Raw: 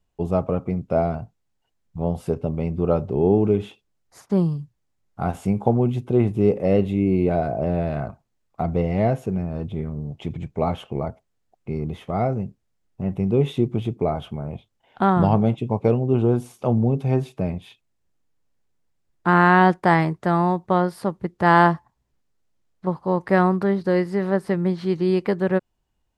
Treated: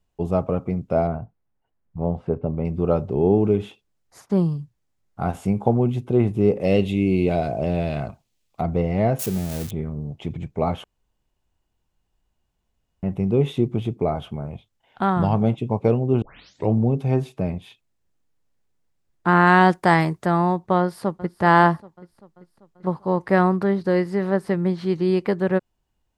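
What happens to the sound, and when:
1.07–2.65 s: low-pass 1.7 kHz
6.61–8.61 s: resonant high shelf 2.1 kHz +8 dB, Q 1.5
9.19–9.71 s: zero-crossing glitches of -20.5 dBFS
10.84–13.03 s: room tone
14.46–15.41 s: peaking EQ 380 Hz -4 dB 2.7 oct
16.22 s: tape start 0.53 s
19.47–20.26 s: treble shelf 4.4 kHz +10 dB
20.80–21.41 s: echo throw 390 ms, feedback 60%, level -16.5 dB

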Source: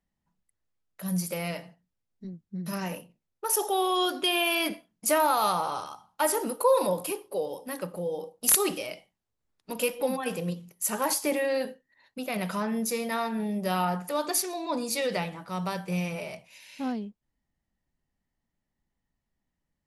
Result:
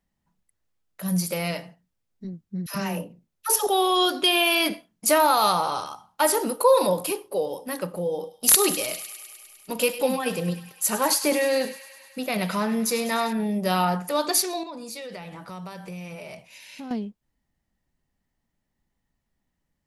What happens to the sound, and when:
2.66–3.67 s: phase dispersion lows, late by 90 ms, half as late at 660 Hz
8.11–13.33 s: feedback echo behind a high-pass 101 ms, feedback 74%, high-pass 1.6 kHz, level -12 dB
14.63–16.91 s: compression 5:1, threshold -40 dBFS
whole clip: dynamic bell 4.2 kHz, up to +5 dB, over -50 dBFS, Q 2.5; trim +4.5 dB

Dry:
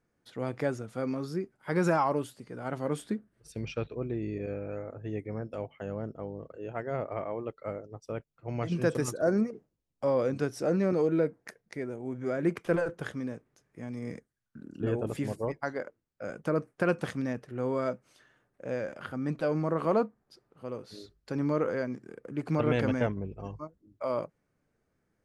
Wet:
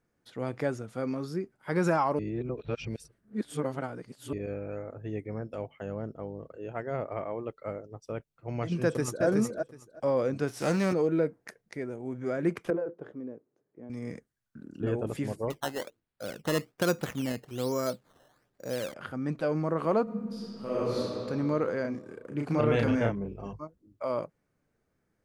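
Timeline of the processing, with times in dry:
2.19–4.33 s: reverse
8.83–9.25 s: echo throw 370 ms, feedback 15%, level -3.5 dB
10.47–10.92 s: formants flattened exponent 0.6
12.70–13.90 s: band-pass filter 390 Hz, Q 1.5
15.50–18.94 s: decimation with a swept rate 13× 1.2 Hz
20.03–20.98 s: reverb throw, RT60 2.8 s, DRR -11.5 dB
21.81–23.53 s: doubling 35 ms -3.5 dB

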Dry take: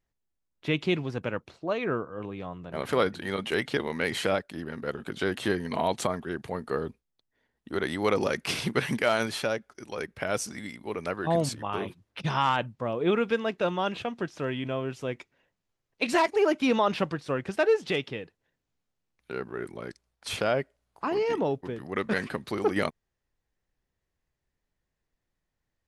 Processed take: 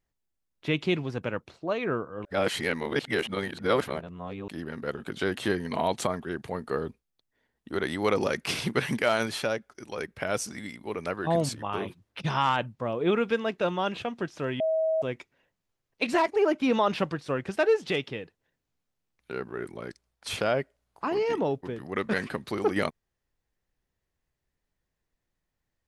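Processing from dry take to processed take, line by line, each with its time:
2.25–4.48 s: reverse
14.60–15.02 s: bleep 640 Hz -22.5 dBFS
16.06–16.73 s: treble shelf 2.5 kHz -6 dB

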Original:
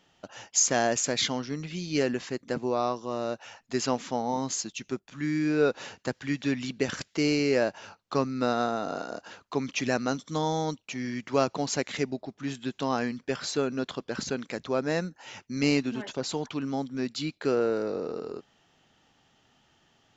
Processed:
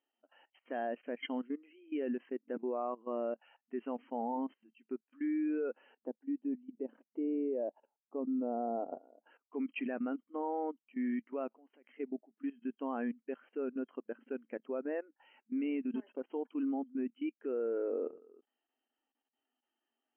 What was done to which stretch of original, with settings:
5.97–9.27 s: high-order bell 2.6 kHz -13 dB 2.5 oct
11.55–12.00 s: compression, threshold -32 dBFS
whole clip: FFT band-pass 220–3200 Hz; level held to a coarse grid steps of 17 dB; spectral contrast expander 1.5:1; trim -5 dB

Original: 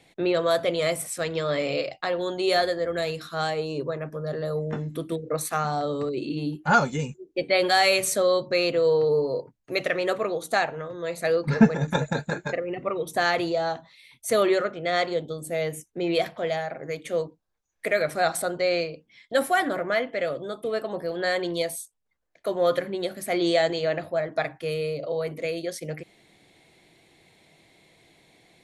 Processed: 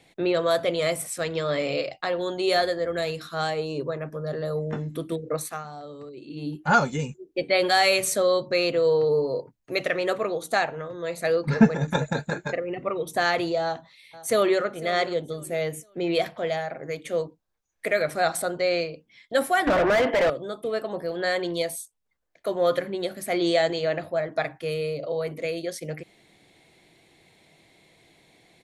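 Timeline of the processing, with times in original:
5.32–6.58 s: dip -12.5 dB, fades 0.32 s
13.63–14.63 s: echo throw 500 ms, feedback 30%, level -17.5 dB
19.67–20.30 s: overdrive pedal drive 30 dB, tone 1.4 kHz, clips at -12.5 dBFS

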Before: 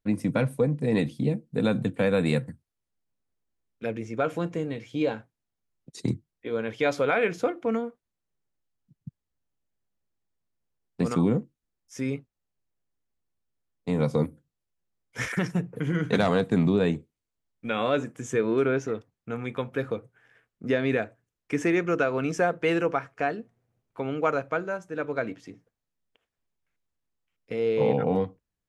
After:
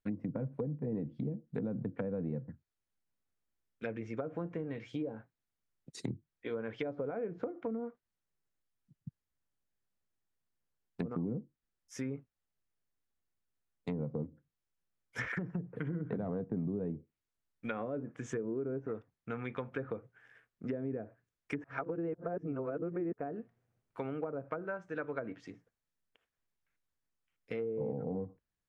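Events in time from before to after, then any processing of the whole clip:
21.64–23.13 s: reverse
whole clip: low-pass that closes with the level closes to 480 Hz, closed at -22 dBFS; peaking EQ 1.6 kHz +4.5 dB 1 oct; compression 3:1, threshold -30 dBFS; trim -5 dB

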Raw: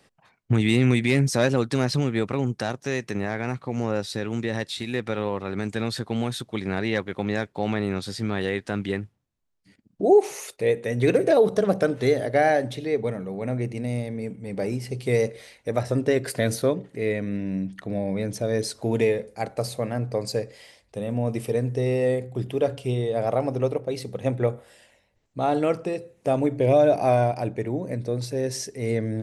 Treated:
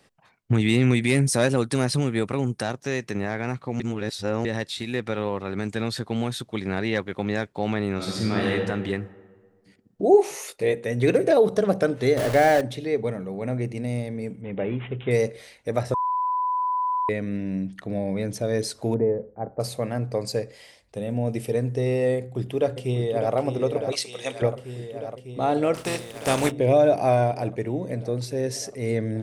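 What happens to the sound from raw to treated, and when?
1.01–2.63 s: peaking EQ 9.4 kHz +12.5 dB 0.35 oct
3.80–4.45 s: reverse
7.95–8.49 s: reverb throw, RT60 1.6 s, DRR -2.5 dB
10.12–10.74 s: doubling 20 ms -5.5 dB
12.17–12.61 s: jump at every zero crossing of -24 dBFS
14.41–15.11 s: careless resampling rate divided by 6×, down none, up filtered
15.94–17.09 s: bleep 999 Hz -21.5 dBFS
18.94–19.60 s: Gaussian low-pass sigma 7.6 samples
20.98–21.52 s: peaking EQ 1.1 kHz -10.5 dB 0.3 oct
22.16–23.35 s: echo throw 600 ms, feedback 80%, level -7.5 dB
23.92–24.42 s: frequency weighting ITU-R 468
25.74–26.50 s: spectral contrast reduction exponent 0.53

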